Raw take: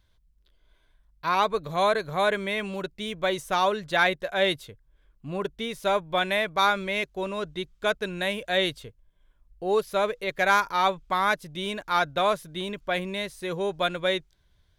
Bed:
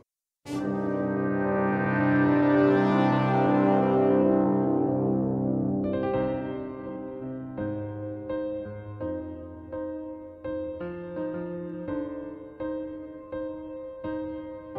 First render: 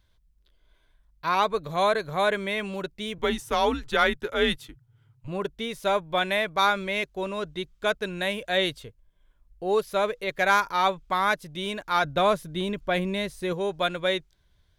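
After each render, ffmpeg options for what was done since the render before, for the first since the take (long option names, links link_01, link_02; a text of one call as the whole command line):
ffmpeg -i in.wav -filter_complex "[0:a]asettb=1/sr,asplit=3[link_01][link_02][link_03];[link_01]atrim=end=3.184[link_04];[link_02]atrim=start=3.18:end=5.28,asetpts=PTS-STARTPTS,afade=type=in:duration=0.004:curve=qsin,afade=type=out:start_time=2.096:duration=0.004:curve=qsin,afreqshift=-150[link_05];[link_03]atrim=start=5.276[link_06];[link_04][link_05]acrossfade=duration=0.004:curve1=hsin:curve2=qsin[link_07];[link_07][link_06]acrossfade=duration=0.004:curve1=qsin:curve2=hsin,asettb=1/sr,asplit=3[link_08][link_09][link_10];[link_08]atrim=end=12.044[link_11];[link_09]atrim=start=12.04:end=13.53,asetpts=PTS-STARTPTS,afade=type=in:duration=0.004:curve=qsin,afade=type=out:start_time=1.486:duration=0.004:curve=qsin,lowshelf=frequency=390:gain=7[link_12];[link_10]atrim=start=13.526[link_13];[link_11][link_12]acrossfade=duration=0.004:curve1=hsin:curve2=qsin[link_14];[link_14][link_13]acrossfade=duration=0.004:curve1=qsin:curve2=hsin" out.wav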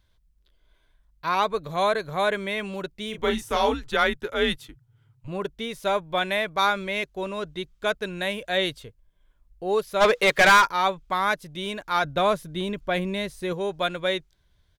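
ffmpeg -i in.wav -filter_complex "[0:a]asplit=3[link_01][link_02][link_03];[link_01]afade=type=out:start_time=3.12:duration=0.02[link_04];[link_02]asplit=2[link_05][link_06];[link_06]adelay=32,volume=-5.5dB[link_07];[link_05][link_07]amix=inputs=2:normalize=0,afade=type=in:start_time=3.12:duration=0.02,afade=type=out:start_time=3.73:duration=0.02[link_08];[link_03]afade=type=in:start_time=3.73:duration=0.02[link_09];[link_04][link_08][link_09]amix=inputs=3:normalize=0,asplit=3[link_10][link_11][link_12];[link_10]afade=type=out:start_time=10:duration=0.02[link_13];[link_11]asplit=2[link_14][link_15];[link_15]highpass=frequency=720:poles=1,volume=24dB,asoftclip=type=tanh:threshold=-8.5dB[link_16];[link_14][link_16]amix=inputs=2:normalize=0,lowpass=frequency=6000:poles=1,volume=-6dB,afade=type=in:start_time=10:duration=0.02,afade=type=out:start_time=10.65:duration=0.02[link_17];[link_12]afade=type=in:start_time=10.65:duration=0.02[link_18];[link_13][link_17][link_18]amix=inputs=3:normalize=0" out.wav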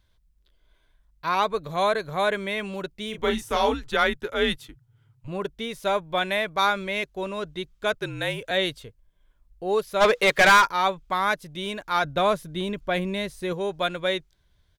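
ffmpeg -i in.wav -filter_complex "[0:a]asettb=1/sr,asplit=3[link_01][link_02][link_03];[link_01]atrim=end=7.934[link_04];[link_02]atrim=start=7.93:end=8.51,asetpts=PTS-STARTPTS,afade=type=in:duration=0.004:curve=qsin,afade=type=out:start_time=0.576:duration=0.004:curve=qsin,afreqshift=-46[link_05];[link_03]atrim=start=8.506[link_06];[link_04][link_05]acrossfade=duration=0.004:curve1=hsin:curve2=qsin[link_07];[link_07][link_06]acrossfade=duration=0.004:curve1=qsin:curve2=hsin" out.wav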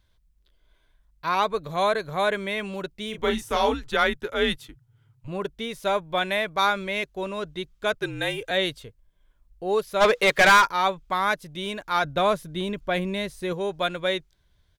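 ffmpeg -i in.wav -filter_complex "[0:a]asettb=1/sr,asplit=3[link_01][link_02][link_03];[link_01]atrim=end=8.034[link_04];[link_02]atrim=start=8.03:end=8.5,asetpts=PTS-STARTPTS,afade=type=in:duration=0.004:curve=qsin,afade=type=out:start_time=0.466:duration=0.004:curve=qsin,aecho=1:1:2.5:0.65,atrim=end_sample=20727[link_05];[link_03]atrim=start=8.496[link_06];[link_04][link_05]acrossfade=duration=0.004:curve1=hsin:curve2=qsin[link_07];[link_07][link_06]acrossfade=duration=0.004:curve1=qsin:curve2=hsin" out.wav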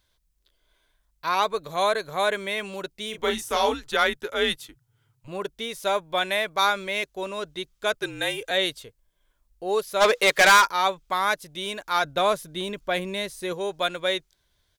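ffmpeg -i in.wav -af "bass=frequency=250:gain=-8,treble=frequency=4000:gain=6" out.wav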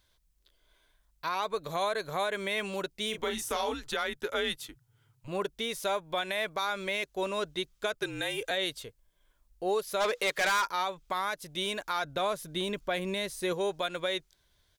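ffmpeg -i in.wav -af "acompressor=threshold=-26dB:ratio=2,alimiter=limit=-21dB:level=0:latency=1:release=123" out.wav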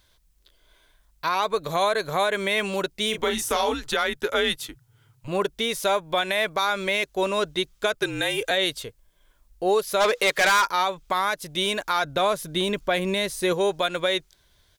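ffmpeg -i in.wav -af "volume=8dB" out.wav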